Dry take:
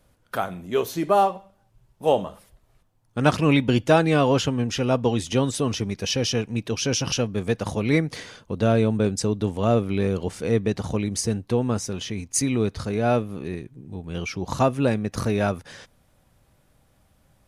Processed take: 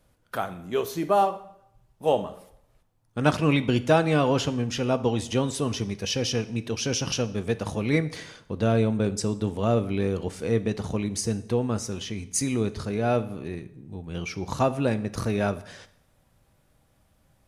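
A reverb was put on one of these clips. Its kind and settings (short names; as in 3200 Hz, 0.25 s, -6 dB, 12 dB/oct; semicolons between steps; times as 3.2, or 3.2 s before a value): plate-style reverb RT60 0.77 s, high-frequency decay 0.85×, DRR 12.5 dB; gain -3 dB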